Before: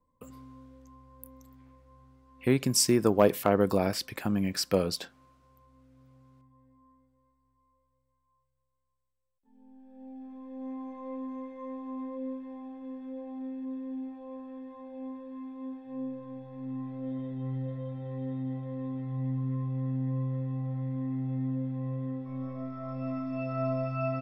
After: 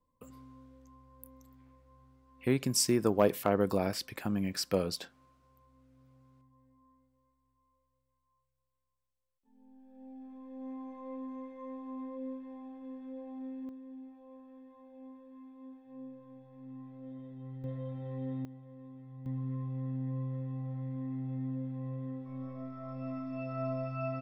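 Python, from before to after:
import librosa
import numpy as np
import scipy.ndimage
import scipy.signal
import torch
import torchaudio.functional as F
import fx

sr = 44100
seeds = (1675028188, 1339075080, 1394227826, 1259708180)

y = fx.gain(x, sr, db=fx.steps((0.0, -4.0), (13.69, -10.5), (17.64, -2.5), (18.45, -14.5), (19.26, -5.0)))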